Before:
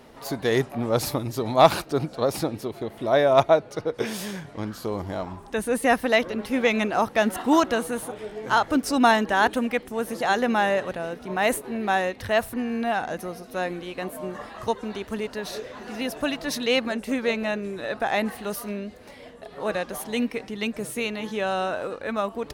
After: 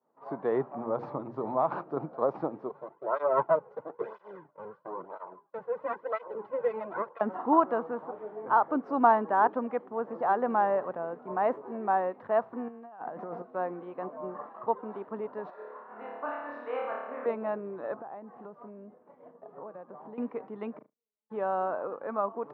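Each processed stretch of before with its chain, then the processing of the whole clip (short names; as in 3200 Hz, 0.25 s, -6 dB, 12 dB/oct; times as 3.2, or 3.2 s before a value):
0.73–1.97 low shelf 130 Hz +7.5 dB + compressor, threshold -19 dBFS + notches 60/120/180/240/300/360/420/480/540 Hz
2.69–7.21 minimum comb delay 2 ms + tape flanging out of phase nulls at 1 Hz, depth 3.5 ms
12.68–13.42 negative-ratio compressor -36 dBFS + Doppler distortion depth 0.19 ms
15.5–17.26 band-pass 1400 Hz, Q 1.1 + flutter echo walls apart 4.8 m, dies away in 1.1 s
17.94–20.18 tilt -2 dB/oct + compressor 12:1, threshold -34 dBFS + LPF 8200 Hz
20.77–21.3 flipped gate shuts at -29 dBFS, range -31 dB + flutter echo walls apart 6.2 m, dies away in 0.38 s
whole clip: elliptic band-pass 140–1100 Hz, stop band 80 dB; expander -38 dBFS; tilt +4 dB/oct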